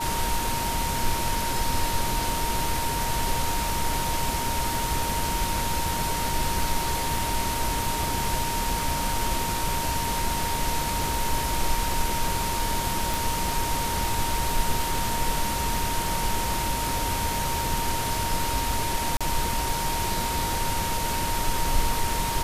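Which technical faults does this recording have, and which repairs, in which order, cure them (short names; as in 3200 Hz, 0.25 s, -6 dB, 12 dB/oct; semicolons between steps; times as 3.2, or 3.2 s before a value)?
tone 930 Hz -29 dBFS
13.14 pop
19.17–19.21 gap 36 ms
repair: de-click; notch 930 Hz, Q 30; interpolate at 19.17, 36 ms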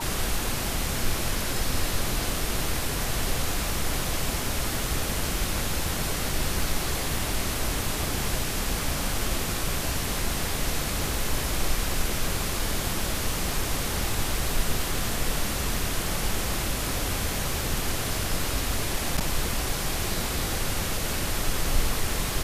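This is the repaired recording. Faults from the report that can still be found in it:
none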